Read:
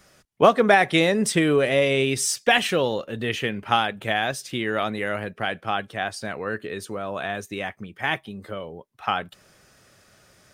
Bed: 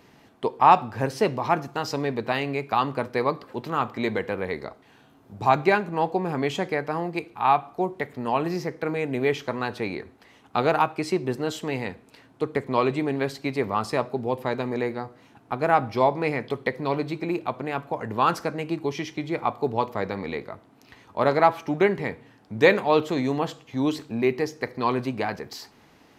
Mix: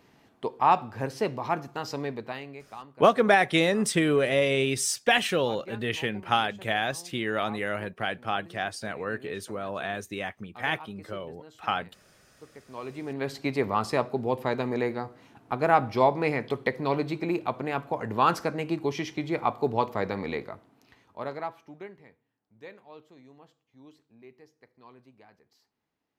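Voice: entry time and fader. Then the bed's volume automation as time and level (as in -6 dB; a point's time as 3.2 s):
2.60 s, -3.5 dB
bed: 2.06 s -5.5 dB
2.93 s -23 dB
12.57 s -23 dB
13.38 s -1 dB
20.41 s -1 dB
22.27 s -28.5 dB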